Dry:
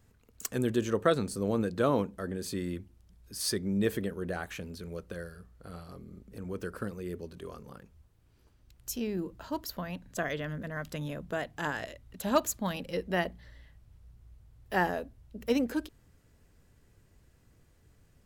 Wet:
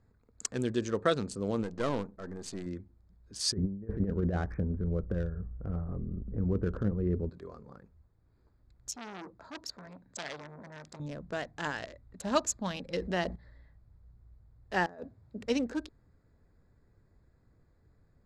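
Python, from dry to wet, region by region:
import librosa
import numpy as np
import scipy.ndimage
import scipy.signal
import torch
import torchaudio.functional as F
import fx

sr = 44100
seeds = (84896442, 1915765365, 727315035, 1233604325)

y = fx.chain(x, sr, fx.halfwave_gain(db=-7.0),
    fx.high_shelf(hz=10000.0, db=7.0), at=(1.63, 2.66))
y = fx.chain(y, sr, fx.steep_lowpass(hz=2100.0, slope=36),
    fx.over_compress(threshold_db=-35.0, ratio=-0.5),
    fx.tilt_eq(slope=-4.0), at=(3.52, 7.3))
y = fx.chain(y, sr, fx.highpass(hz=170.0, slope=6),
    fx.transformer_sat(knee_hz=3700.0), at=(8.89, 11.0))
y = fx.chain(y, sr, fx.dynamic_eq(hz=2100.0, q=1.7, threshold_db=-41.0, ratio=4.0, max_db=-4),
    fx.env_flatten(amount_pct=50), at=(12.93, 13.36))
y = fx.chain(y, sr, fx.highpass(hz=82.0, slope=24),
    fx.over_compress(threshold_db=-39.0, ratio=-0.5), at=(14.86, 15.46))
y = fx.wiener(y, sr, points=15)
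y = scipy.signal.sosfilt(scipy.signal.butter(4, 7500.0, 'lowpass', fs=sr, output='sos'), y)
y = fx.high_shelf(y, sr, hz=2900.0, db=8.5)
y = y * librosa.db_to_amplitude(-2.5)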